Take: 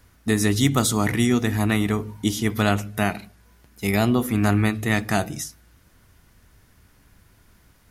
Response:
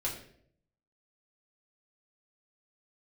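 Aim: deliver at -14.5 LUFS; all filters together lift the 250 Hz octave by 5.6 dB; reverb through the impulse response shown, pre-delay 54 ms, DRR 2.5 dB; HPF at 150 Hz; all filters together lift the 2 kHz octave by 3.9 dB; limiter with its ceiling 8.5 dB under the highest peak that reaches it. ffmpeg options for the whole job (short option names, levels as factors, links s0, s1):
-filter_complex "[0:a]highpass=150,equalizer=f=250:t=o:g=7.5,equalizer=f=2000:t=o:g=4.5,alimiter=limit=0.299:level=0:latency=1,asplit=2[s0][s1];[1:a]atrim=start_sample=2205,adelay=54[s2];[s1][s2]afir=irnorm=-1:irlink=0,volume=0.501[s3];[s0][s3]amix=inputs=2:normalize=0,volume=1.78"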